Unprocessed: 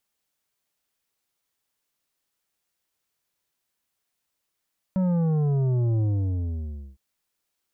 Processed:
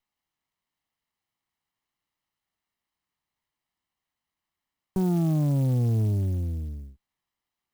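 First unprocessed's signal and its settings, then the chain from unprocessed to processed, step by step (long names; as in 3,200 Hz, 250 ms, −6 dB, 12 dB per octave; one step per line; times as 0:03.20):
bass drop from 190 Hz, over 2.01 s, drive 9 dB, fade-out 0.96 s, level −21 dB
lower of the sound and its delayed copy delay 1 ms
high-frequency loss of the air 83 metres
converter with an unsteady clock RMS 0.036 ms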